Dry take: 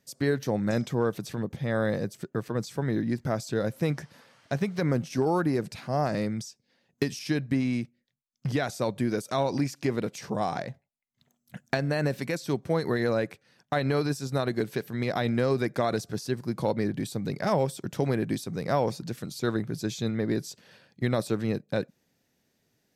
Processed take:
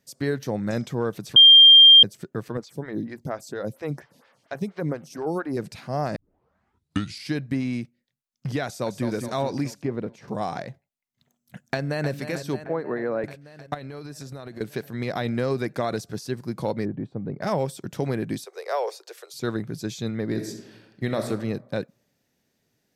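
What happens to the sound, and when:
1.36–2.03 s: bleep 3.19 kHz -7 dBFS
2.57–5.57 s: lamp-driven phase shifter 4.3 Hz
6.16 s: tape start 1.17 s
8.65–9.07 s: echo throw 210 ms, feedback 60%, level -7 dB
9.82–10.28 s: low-pass 1 kHz 6 dB/octave
11.63–12.11 s: echo throw 310 ms, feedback 75%, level -10 dB
12.64–13.24 s: three-band isolator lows -14 dB, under 210 Hz, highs -23 dB, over 2.1 kHz
13.74–14.61 s: compression 16:1, threshold -33 dBFS
16.85–17.41 s: low-pass 1 kHz
18.45–19.34 s: steep high-pass 390 Hz 72 dB/octave
20.25–21.26 s: reverb throw, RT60 1 s, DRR 5 dB

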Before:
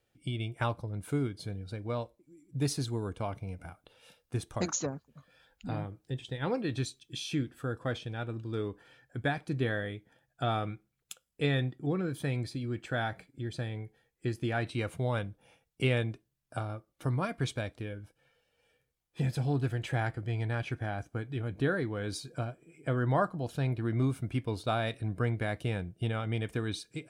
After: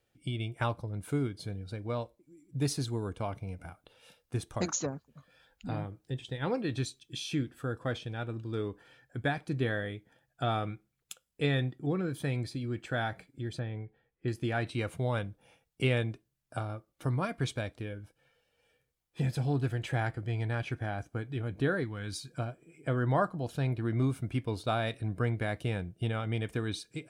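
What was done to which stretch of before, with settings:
13.59–14.28 s: distance through air 330 m
21.84–22.39 s: peaking EQ 490 Hz -10 dB 1.6 oct

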